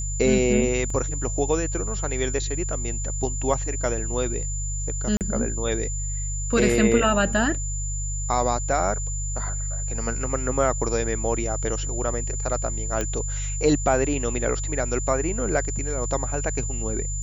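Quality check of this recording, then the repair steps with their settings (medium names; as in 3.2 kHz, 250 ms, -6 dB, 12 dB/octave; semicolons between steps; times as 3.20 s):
hum 50 Hz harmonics 3 -29 dBFS
whine 7.1 kHz -31 dBFS
0.90 s: dropout 3 ms
5.17–5.21 s: dropout 38 ms
13.01 s: pop -12 dBFS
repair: de-click; band-stop 7.1 kHz, Q 30; de-hum 50 Hz, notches 3; interpolate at 0.90 s, 3 ms; interpolate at 5.17 s, 38 ms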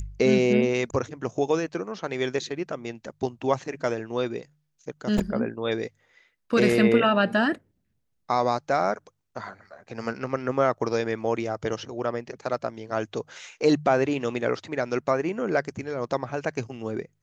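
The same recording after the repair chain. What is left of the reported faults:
nothing left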